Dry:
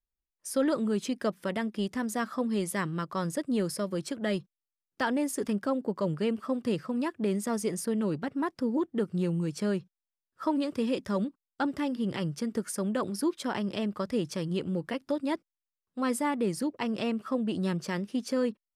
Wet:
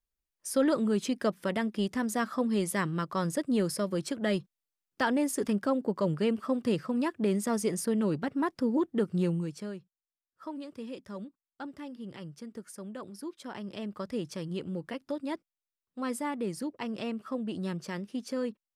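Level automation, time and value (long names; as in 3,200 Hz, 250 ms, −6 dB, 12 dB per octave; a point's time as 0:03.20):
0:09.28 +1 dB
0:09.75 −11.5 dB
0:13.27 −11.5 dB
0:14.06 −4.5 dB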